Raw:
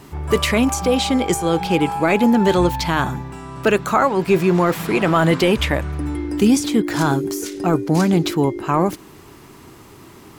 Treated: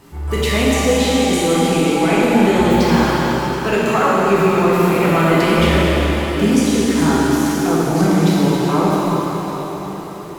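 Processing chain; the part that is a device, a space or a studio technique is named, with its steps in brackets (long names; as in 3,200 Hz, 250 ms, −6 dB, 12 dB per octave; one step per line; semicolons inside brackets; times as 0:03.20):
cathedral (convolution reverb RT60 5.1 s, pre-delay 6 ms, DRR −8.5 dB)
level −5.5 dB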